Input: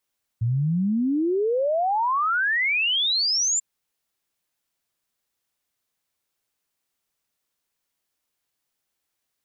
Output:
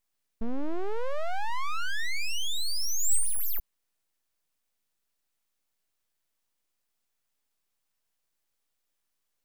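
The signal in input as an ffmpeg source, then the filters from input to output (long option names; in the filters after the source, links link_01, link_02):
-f lavfi -i "aevalsrc='0.106*clip(min(t,3.19-t)/0.01,0,1)*sin(2*PI*110*3.19/log(7400/110)*(exp(log(7400/110)*t/3.19)-1))':duration=3.19:sample_rate=44100"
-af "asoftclip=type=tanh:threshold=-22.5dB,equalizer=frequency=4000:width=4.4:gain=7,aeval=exprs='abs(val(0))':channel_layout=same"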